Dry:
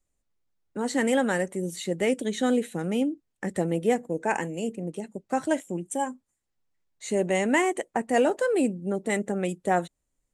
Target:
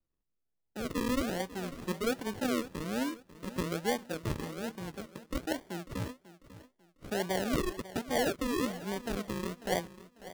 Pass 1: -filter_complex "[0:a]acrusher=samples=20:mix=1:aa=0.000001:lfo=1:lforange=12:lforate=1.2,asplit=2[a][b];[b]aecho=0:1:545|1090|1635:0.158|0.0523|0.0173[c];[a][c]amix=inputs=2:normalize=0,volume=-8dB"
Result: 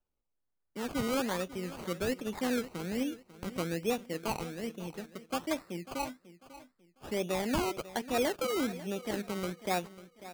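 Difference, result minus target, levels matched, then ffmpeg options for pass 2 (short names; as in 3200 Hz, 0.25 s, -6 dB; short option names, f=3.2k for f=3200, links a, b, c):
decimation with a swept rate: distortion -11 dB
-filter_complex "[0:a]acrusher=samples=47:mix=1:aa=0.000001:lfo=1:lforange=28.2:lforate=1.2,asplit=2[a][b];[b]aecho=0:1:545|1090|1635:0.158|0.0523|0.0173[c];[a][c]amix=inputs=2:normalize=0,volume=-8dB"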